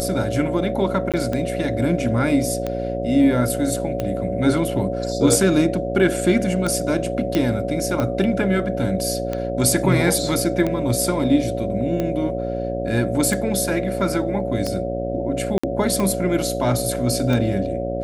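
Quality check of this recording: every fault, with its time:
buzz 60 Hz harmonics 12 -27 dBFS
tick 45 rpm -11 dBFS
tone 560 Hz -26 dBFS
1.12–1.14 gap 17 ms
7.35 pop -7 dBFS
15.58–15.63 gap 55 ms

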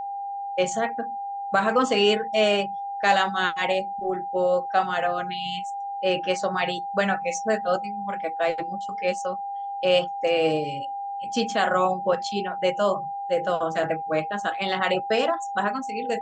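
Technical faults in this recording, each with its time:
tone 800 Hz -29 dBFS

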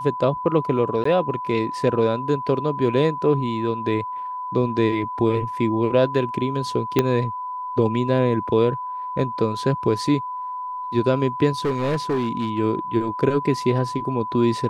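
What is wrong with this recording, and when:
tone 1000 Hz -27 dBFS
1.04–1.05 gap 14 ms
6.99 pop -4 dBFS
11.65–12.59 clipped -18 dBFS

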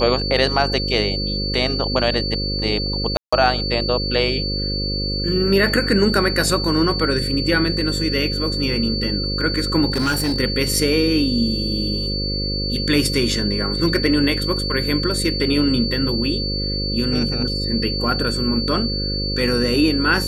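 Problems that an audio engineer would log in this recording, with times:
buzz 50 Hz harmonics 11 -25 dBFS
tone 4500 Hz -24 dBFS
3.17–3.33 gap 0.155 s
9.9–10.38 clipped -16 dBFS

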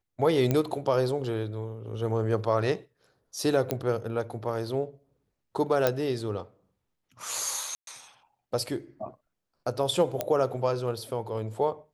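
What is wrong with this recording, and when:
0.51 pop -12 dBFS
3.71 pop -12 dBFS
5.87 pop -9 dBFS
7.75–7.87 gap 0.122 s
10.21 pop -12 dBFS

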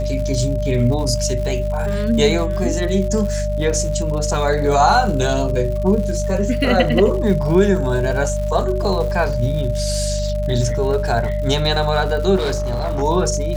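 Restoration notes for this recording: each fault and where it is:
crackle 160/s -27 dBFS
hum 50 Hz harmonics 4 -22 dBFS
tone 600 Hz -23 dBFS
12.36–13.03 clipped -16.5 dBFS

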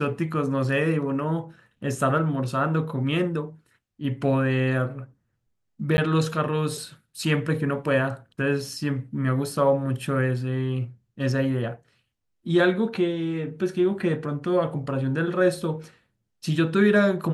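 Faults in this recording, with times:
5.97–5.98 gap 10 ms

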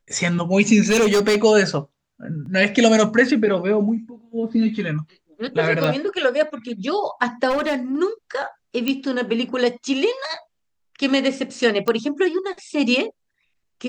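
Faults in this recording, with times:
0.87–1.37 clipped -13 dBFS
2.46 gap 2.3 ms
5.84 pop -10 dBFS
7.49–7.96 clipped -17.5 dBFS
8.88 pop -8 dBFS
11.88 pop -9 dBFS

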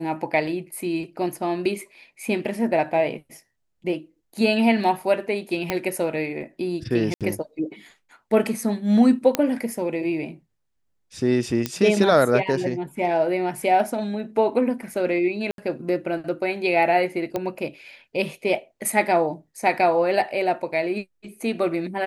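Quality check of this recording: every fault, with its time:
5.7 pop -8 dBFS
7.14–7.21 gap 67 ms
9.35 pop -5 dBFS
11.66 pop -8 dBFS
15.51–15.58 gap 72 ms
17.36 pop -13 dBFS

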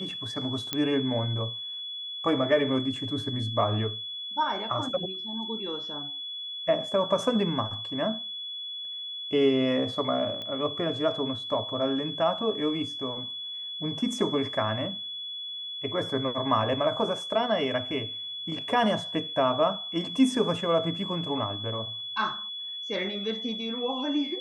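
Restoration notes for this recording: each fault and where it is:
tone 3400 Hz -34 dBFS
0.73 pop -11 dBFS
10.42 pop -24 dBFS

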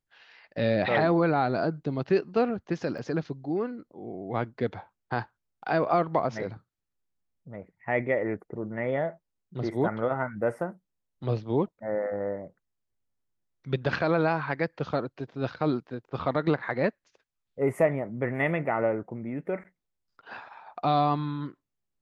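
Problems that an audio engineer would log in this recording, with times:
2.98 gap 4.4 ms

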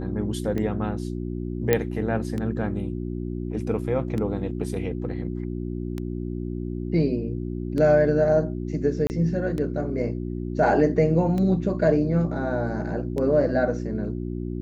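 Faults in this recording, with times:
hum 60 Hz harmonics 6 -30 dBFS
tick 33 1/3 rpm -18 dBFS
1.73 pop -6 dBFS
9.07–9.1 gap 29 ms

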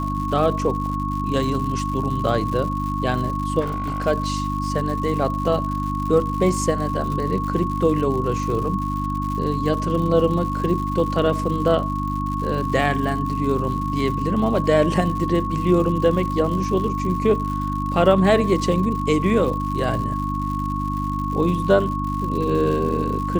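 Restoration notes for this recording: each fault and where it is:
crackle 150/s -29 dBFS
hum 50 Hz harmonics 6 -26 dBFS
tone 1100 Hz -26 dBFS
3.6–4.07 clipped -20.5 dBFS

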